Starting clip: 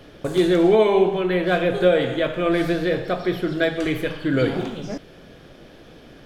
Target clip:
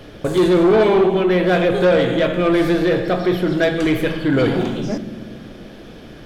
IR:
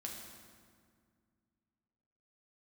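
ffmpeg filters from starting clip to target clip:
-filter_complex "[0:a]asplit=2[s0][s1];[1:a]atrim=start_sample=2205,lowshelf=f=370:g=8[s2];[s1][s2]afir=irnorm=-1:irlink=0,volume=0.355[s3];[s0][s3]amix=inputs=2:normalize=0,asoftclip=type=tanh:threshold=0.224,volume=1.58"

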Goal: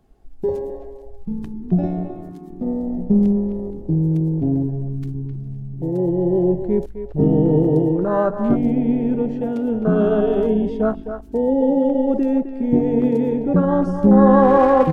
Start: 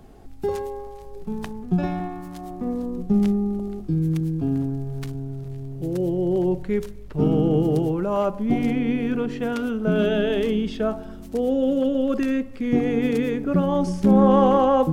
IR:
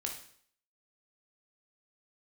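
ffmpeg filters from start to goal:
-filter_complex "[0:a]afwtdn=0.0708,asplit=2[s0][s1];[s1]adelay=260,highpass=300,lowpass=3400,asoftclip=type=hard:threshold=0.178,volume=0.398[s2];[s0][s2]amix=inputs=2:normalize=0,volume=1.58"

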